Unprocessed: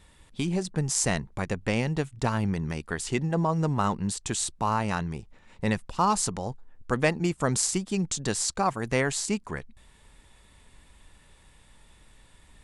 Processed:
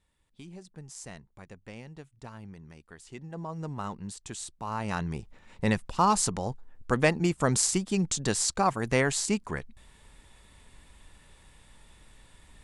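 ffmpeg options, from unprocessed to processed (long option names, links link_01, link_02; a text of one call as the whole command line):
ffmpeg -i in.wav -af "volume=0.5dB,afade=type=in:start_time=3.06:duration=0.63:silence=0.398107,afade=type=in:start_time=4.66:duration=0.5:silence=0.298538" out.wav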